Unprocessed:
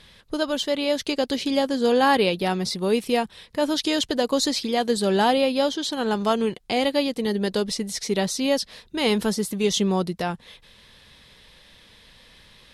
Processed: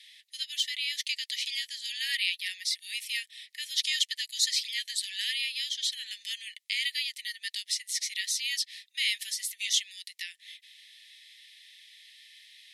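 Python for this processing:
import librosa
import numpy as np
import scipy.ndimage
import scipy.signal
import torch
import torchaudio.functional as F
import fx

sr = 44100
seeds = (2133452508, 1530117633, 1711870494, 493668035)

y = scipy.signal.sosfilt(scipy.signal.cheby1(8, 1.0, 1800.0, 'highpass', fs=sr, output='sos'), x)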